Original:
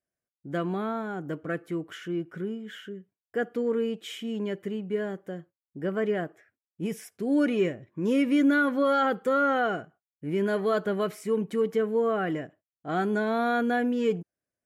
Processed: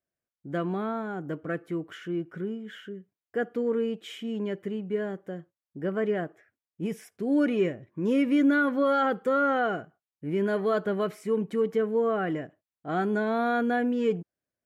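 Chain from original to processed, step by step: high shelf 3800 Hz -6.5 dB

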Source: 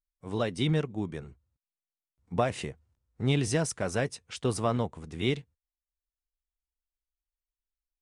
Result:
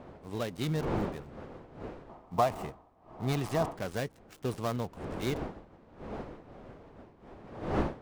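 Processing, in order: switching dead time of 0.13 ms; wind noise 550 Hz -36 dBFS; spectral gain 2.1–3.76, 620–1300 Hz +9 dB; gain -5 dB

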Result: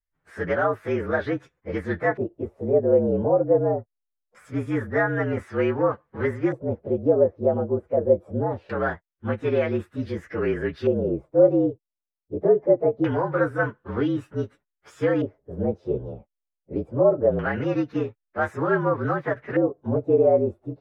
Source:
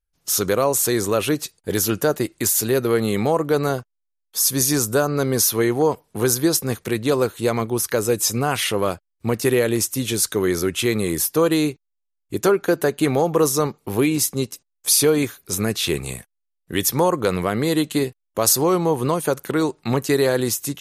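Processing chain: inharmonic rescaling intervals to 114%; LFO low-pass square 0.23 Hz 600–1700 Hz; gain -3 dB

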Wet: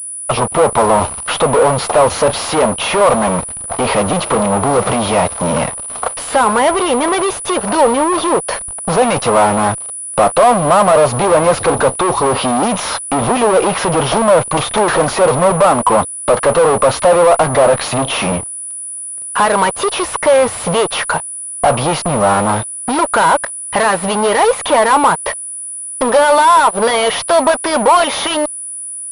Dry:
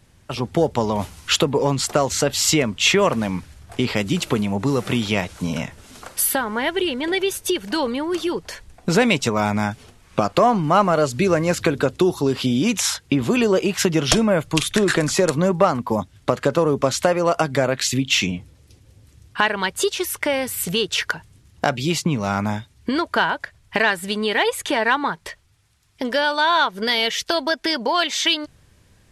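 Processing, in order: 4.19–4.79 notches 60/120/180/240/300/360/420/480 Hz; fuzz box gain 33 dB, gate -40 dBFS; band shelf 770 Hz +11 dB; pulse-width modulation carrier 9800 Hz; gain -3 dB

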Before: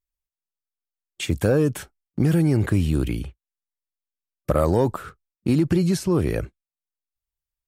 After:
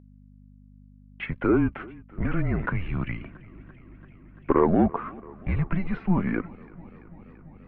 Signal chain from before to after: mistuned SSB -180 Hz 160–2500 Hz; flange 0.73 Hz, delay 1.7 ms, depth 3.5 ms, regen +55%; in parallel at -1.5 dB: vocal rider 2 s; on the sum: hum 50 Hz, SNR 22 dB; low shelf 130 Hz -10.5 dB; warbling echo 0.338 s, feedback 78%, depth 55 cents, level -23 dB; gain +2 dB

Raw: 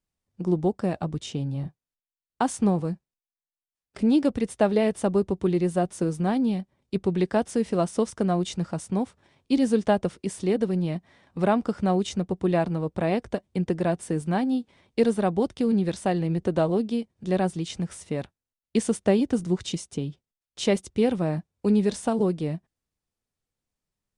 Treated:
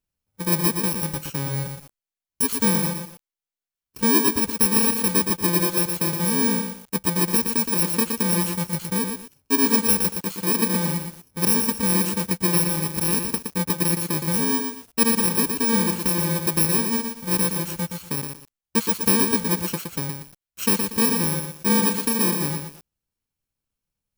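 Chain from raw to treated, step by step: FFT order left unsorted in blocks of 64 samples; lo-fi delay 0.118 s, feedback 35%, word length 7-bit, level -5 dB; gain +1.5 dB

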